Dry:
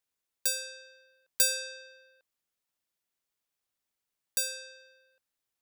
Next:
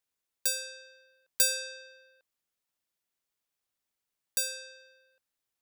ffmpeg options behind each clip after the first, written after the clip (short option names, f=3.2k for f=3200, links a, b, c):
-af anull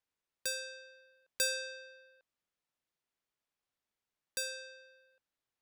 -af "aemphasis=mode=reproduction:type=50kf"